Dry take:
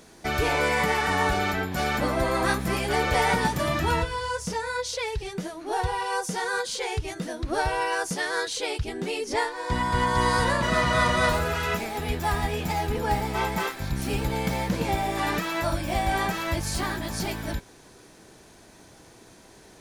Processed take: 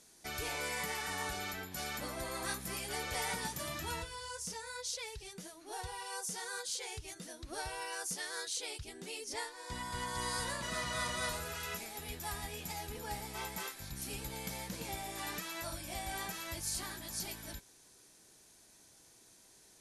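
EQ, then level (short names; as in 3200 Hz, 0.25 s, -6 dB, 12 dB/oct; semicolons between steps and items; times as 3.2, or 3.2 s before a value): elliptic low-pass 12000 Hz, stop band 40 dB; pre-emphasis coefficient 0.8; -3.0 dB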